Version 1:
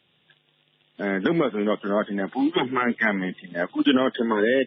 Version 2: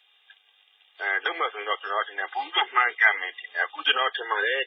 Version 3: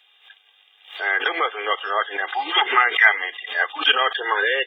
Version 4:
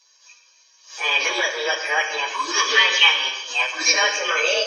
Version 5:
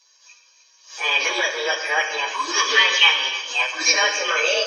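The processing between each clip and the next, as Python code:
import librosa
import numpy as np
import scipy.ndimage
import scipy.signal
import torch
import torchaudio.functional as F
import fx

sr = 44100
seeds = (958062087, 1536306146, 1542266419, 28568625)

y1 = scipy.signal.sosfilt(scipy.signal.bessel(6, 960.0, 'highpass', norm='mag', fs=sr, output='sos'), x)
y1 = y1 + 0.7 * np.pad(y1, (int(2.5 * sr / 1000.0), 0))[:len(y1)]
y1 = F.gain(torch.from_numpy(y1), 3.5).numpy()
y2 = fx.pre_swell(y1, sr, db_per_s=140.0)
y2 = F.gain(torch.from_numpy(y2), 4.5).numpy()
y3 = fx.partial_stretch(y2, sr, pct=122)
y3 = fx.rev_gated(y3, sr, seeds[0], gate_ms=380, shape='falling', drr_db=4.5)
y3 = F.gain(torch.from_numpy(y3), 4.0).numpy()
y4 = y3 + 10.0 ** (-16.0 / 20.0) * np.pad(y3, (int(307 * sr / 1000.0), 0))[:len(y3)]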